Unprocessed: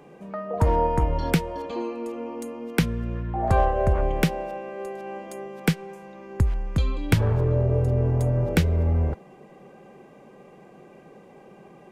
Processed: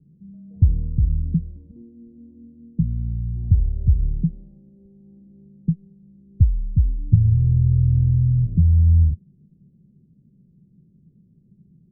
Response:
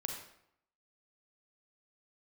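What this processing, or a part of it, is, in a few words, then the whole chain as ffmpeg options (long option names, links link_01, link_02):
the neighbour's flat through the wall: -af "lowpass=frequency=180:width=0.5412,lowpass=frequency=180:width=1.3066,equalizer=frequency=90:width_type=o:width=0.83:gain=5.5,volume=3dB"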